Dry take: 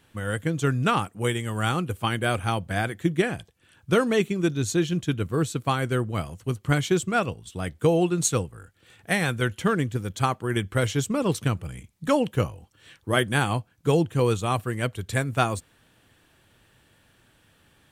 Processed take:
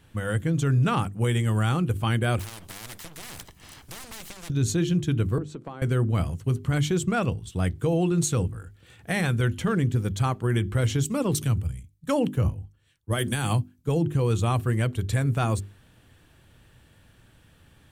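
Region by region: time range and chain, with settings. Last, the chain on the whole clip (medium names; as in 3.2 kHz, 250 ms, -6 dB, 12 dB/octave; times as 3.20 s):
2.39–4.50 s: comb filter that takes the minimum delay 1 ms + compression 10:1, threshold -30 dBFS + spectrum-flattening compressor 4:1
5.38–5.82 s: band-pass 360–7100 Hz + tilt shelf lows +9 dB, about 1.2 kHz + compression, threshold -36 dBFS
11.05–14.14 s: treble shelf 6.6 kHz +8.5 dB + three bands expanded up and down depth 100%
whole clip: bass shelf 190 Hz +11.5 dB; hum notches 50/100/150/200/250/300/350/400 Hz; peak limiter -15.5 dBFS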